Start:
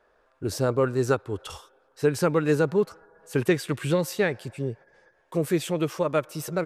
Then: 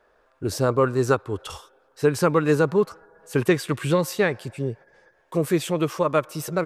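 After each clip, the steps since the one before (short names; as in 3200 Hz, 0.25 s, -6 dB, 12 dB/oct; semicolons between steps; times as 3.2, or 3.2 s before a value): dynamic EQ 1100 Hz, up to +6 dB, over -46 dBFS, Q 3.8; gain +2.5 dB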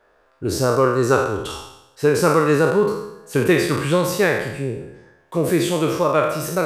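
spectral trails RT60 0.84 s; gain +1.5 dB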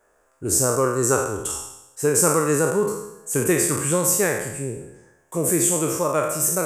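resonant high shelf 5600 Hz +11.5 dB, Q 3; gain -4 dB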